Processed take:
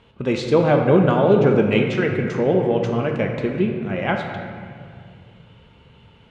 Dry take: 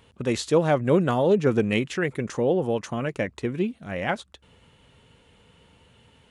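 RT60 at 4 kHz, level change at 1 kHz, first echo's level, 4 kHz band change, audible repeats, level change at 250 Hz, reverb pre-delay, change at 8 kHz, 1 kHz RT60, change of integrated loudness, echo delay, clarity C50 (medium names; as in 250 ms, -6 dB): 1.4 s, +5.5 dB, no echo, +2.5 dB, no echo, +5.5 dB, 3 ms, no reading, 2.2 s, +5.5 dB, no echo, 4.0 dB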